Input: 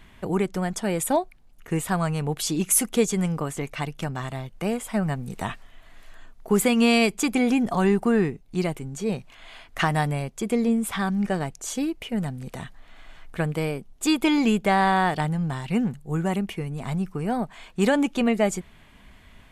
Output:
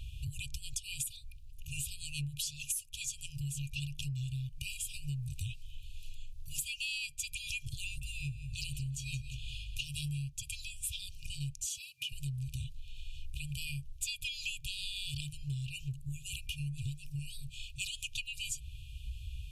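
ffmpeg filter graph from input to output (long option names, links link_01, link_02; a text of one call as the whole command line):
ffmpeg -i in.wav -filter_complex "[0:a]asettb=1/sr,asplit=3[link_01][link_02][link_03];[link_01]atrim=end=7.844[link_04];[link_02]atrim=start=7.84:end=10.18,asetpts=PTS-STARTPTS,afade=type=in:duration=0.004:curve=qsin,afade=type=out:start_time=2.336:duration=0.004:curve=qsin,aeval=exprs='val(0)+0.002*(sin(2*PI*50*n/s)+sin(2*PI*2*50*n/s)/2+sin(2*PI*3*50*n/s)/3+sin(2*PI*4*50*n/s)/4+sin(2*PI*5*50*n/s)/5)':channel_layout=same,aecho=1:1:174|348|522|696:0.251|0.0929|0.0344|0.0127,atrim=end_sample=103194[link_05];[link_03]atrim=start=10.176[link_06];[link_04][link_05]acrossfade=duration=0.004:curve1=hsin:curve2=qsin[link_07];[link_07][link_06]acrossfade=duration=0.004:curve1=qsin:curve2=hsin,asettb=1/sr,asplit=3[link_08][link_09][link_10];[link_08]atrim=end=11.654[link_11];[link_09]atrim=start=11.65:end=12.12,asetpts=PTS-STARTPTS,afade=type=in:duration=0.004:curve=qsin,afade=type=out:start_time=0.466:duration=0.004:curve=qsin,highpass=frequency=170:width=0.5412,highpass=frequency=170:width=1.3066,acompressor=threshold=-28dB:ratio=3:attack=3.2:release=140:knee=1:detection=peak[link_12];[link_10]atrim=start=12.116[link_13];[link_11][link_12]acrossfade=duration=0.004:curve1=hsin:curve2=qsin[link_14];[link_14][link_13]acrossfade=duration=0.004:curve1=qsin:curve2=hsin,afftfilt=real='re*(1-between(b*sr/4096,150,2400))':imag='im*(1-between(b*sr/4096,150,2400))':win_size=4096:overlap=0.75,equalizer=frequency=62:width=1:gain=13,acompressor=threshold=-37dB:ratio=12,volume=2.5dB" out.wav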